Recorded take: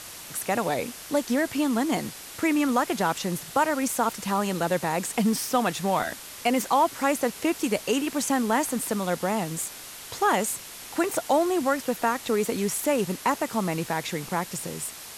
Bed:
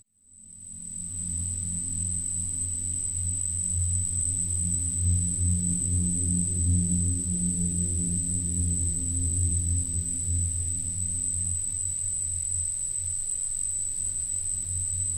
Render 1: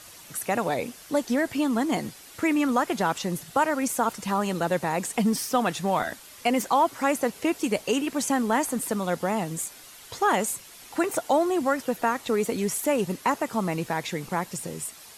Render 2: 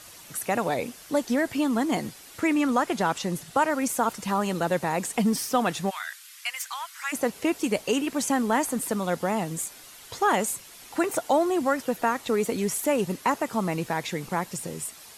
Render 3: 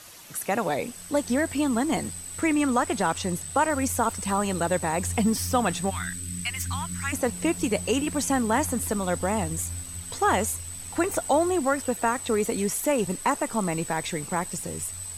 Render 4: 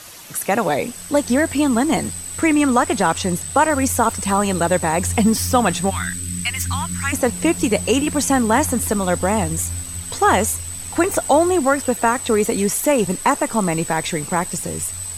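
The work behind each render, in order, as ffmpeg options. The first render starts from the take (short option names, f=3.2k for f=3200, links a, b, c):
-af "afftdn=nr=8:nf=-42"
-filter_complex "[0:a]asettb=1/sr,asplit=3[a][b][c];[a]atrim=end=2.404[d];[b]atrim=start=2.4:end=3.7,asetpts=PTS-STARTPTS,afade=t=in:d=0.004:c=qsin,afade=t=out:st=1.296:d=0.004:c=qsin,equalizer=f=14k:t=o:w=0.21:g=-11.5[e];[c]atrim=start=3.696[f];[d][e]acrossfade=d=0.004:c1=hsin:c2=qsin[g];[g][f]acrossfade=d=0.004:c1=qsin:c2=hsin,asplit=3[h][i][j];[h]afade=t=out:st=5.89:d=0.02[k];[i]highpass=f=1.4k:w=0.5412,highpass=f=1.4k:w=1.3066,afade=t=in:st=5.89:d=0.02,afade=t=out:st=7.12:d=0.02[l];[j]afade=t=in:st=7.12:d=0.02[m];[k][l][m]amix=inputs=3:normalize=0"
-filter_complex "[1:a]volume=-8.5dB[a];[0:a][a]amix=inputs=2:normalize=0"
-af "volume=7.5dB"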